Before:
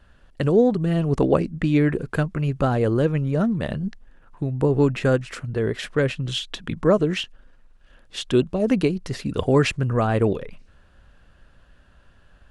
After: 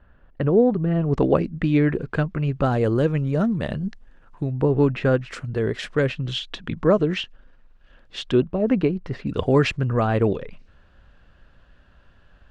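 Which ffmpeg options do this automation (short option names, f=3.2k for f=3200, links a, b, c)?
-af "asetnsamples=n=441:p=0,asendcmd='1.13 lowpass f 4100;2.65 lowpass f 7900;4.52 lowpass f 3500;5.3 lowpass f 7500;6.08 lowpass f 4600;8.35 lowpass f 2200;9.27 lowpass f 5100',lowpass=1.8k"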